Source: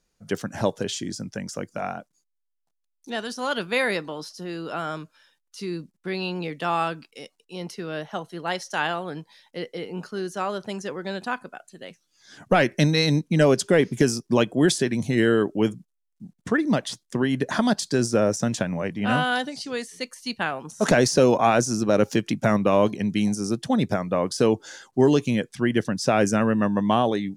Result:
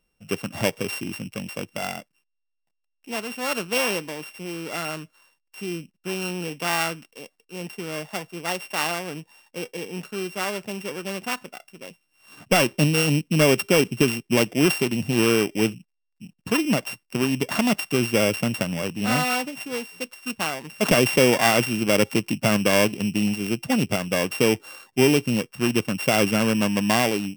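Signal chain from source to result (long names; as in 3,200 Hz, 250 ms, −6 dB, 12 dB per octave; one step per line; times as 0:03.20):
samples sorted by size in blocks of 16 samples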